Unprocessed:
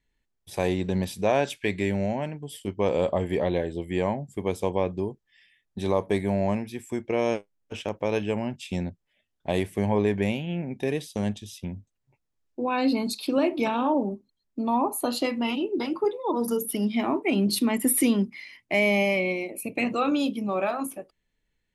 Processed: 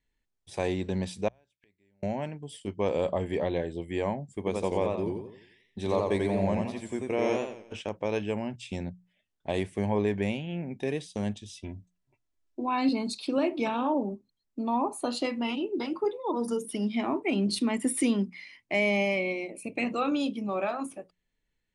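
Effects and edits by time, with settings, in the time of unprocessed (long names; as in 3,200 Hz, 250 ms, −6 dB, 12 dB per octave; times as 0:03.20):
0:01.28–0:02.03: gate with flip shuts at −28 dBFS, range −39 dB
0:04.37–0:07.73: feedback echo with a swinging delay time 87 ms, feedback 42%, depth 133 cents, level −3 dB
0:11.49–0:12.89: comb filter 3 ms, depth 61%
whole clip: Butterworth low-pass 10,000 Hz 72 dB per octave; mains-hum notches 60/120/180 Hz; level −3.5 dB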